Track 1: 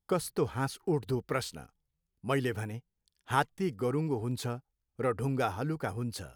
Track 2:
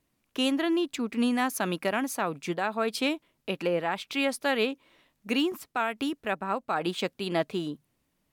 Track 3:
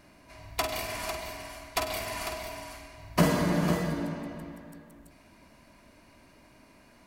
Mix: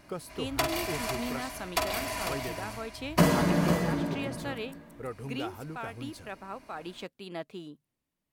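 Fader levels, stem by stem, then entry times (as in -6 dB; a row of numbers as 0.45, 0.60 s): -8.0, -11.0, +1.0 dB; 0.00, 0.00, 0.00 s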